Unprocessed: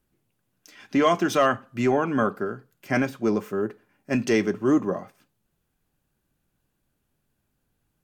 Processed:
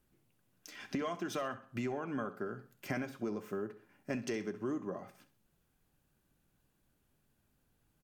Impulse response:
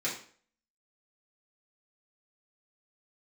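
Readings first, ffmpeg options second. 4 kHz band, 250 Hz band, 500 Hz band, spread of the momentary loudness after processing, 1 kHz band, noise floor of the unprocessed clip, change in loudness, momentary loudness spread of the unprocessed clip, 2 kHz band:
-14.0 dB, -15.0 dB, -15.5 dB, 11 LU, -17.0 dB, -76 dBFS, -15.5 dB, 11 LU, -15.0 dB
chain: -af "acompressor=threshold=-34dB:ratio=8,aecho=1:1:65|130|195:0.168|0.0655|0.0255,volume=-1dB"

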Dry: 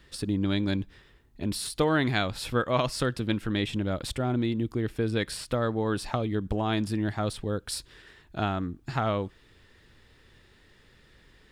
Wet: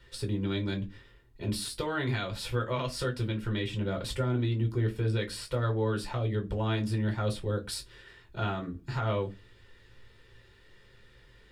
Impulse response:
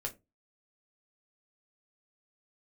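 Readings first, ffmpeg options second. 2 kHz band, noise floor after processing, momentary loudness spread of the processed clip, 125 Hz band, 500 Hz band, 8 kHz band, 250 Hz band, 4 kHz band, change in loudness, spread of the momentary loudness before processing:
-4.5 dB, -58 dBFS, 7 LU, +1.0 dB, -3.5 dB, -4.0 dB, -5.5 dB, -3.5 dB, -3.0 dB, 7 LU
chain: -filter_complex "[0:a]equalizer=f=3.5k:w=0.54:g=3,alimiter=limit=-18dB:level=0:latency=1:release=204[a];[1:a]atrim=start_sample=2205[b];[a][b]afir=irnorm=-1:irlink=0,volume=-3dB"

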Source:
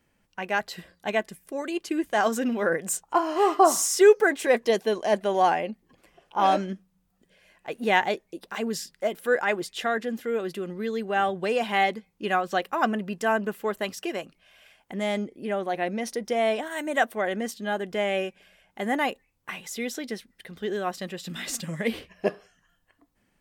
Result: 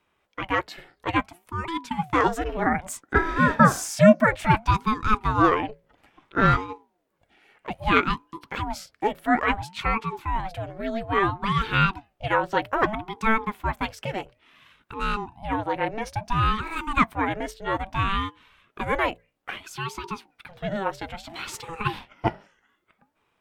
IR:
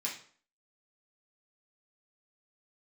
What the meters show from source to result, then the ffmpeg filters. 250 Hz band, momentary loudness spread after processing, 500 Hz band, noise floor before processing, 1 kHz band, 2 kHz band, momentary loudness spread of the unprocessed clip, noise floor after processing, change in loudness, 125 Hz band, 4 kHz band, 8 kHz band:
+3.5 dB, 15 LU, -3.5 dB, -71 dBFS, +2.5 dB, +2.5 dB, 13 LU, -72 dBFS, +1.5 dB, +13.0 dB, 0.0 dB, -6.5 dB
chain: -af "bass=f=250:g=-10,treble=f=4k:g=-10,bandreject=f=60:t=h:w=6,bandreject=f=120:t=h:w=6,bandreject=f=180:t=h:w=6,bandreject=f=240:t=h:w=6,bandreject=f=300:t=h:w=6,bandreject=f=360:t=h:w=6,aeval=exprs='val(0)*sin(2*PI*430*n/s+430*0.55/0.6*sin(2*PI*0.6*n/s))':c=same,volume=5.5dB"

